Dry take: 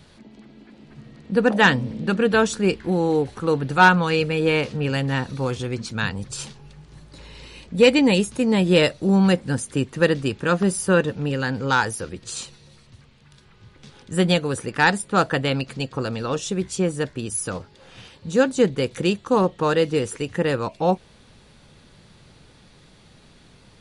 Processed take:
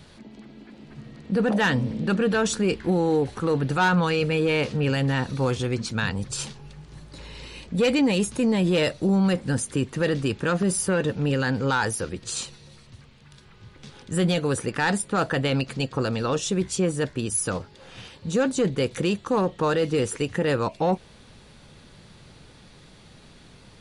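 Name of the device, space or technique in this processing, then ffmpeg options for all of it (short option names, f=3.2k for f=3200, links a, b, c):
soft clipper into limiter: -af "asoftclip=type=tanh:threshold=-9dB,alimiter=limit=-16.5dB:level=0:latency=1:release=11,volume=1.5dB"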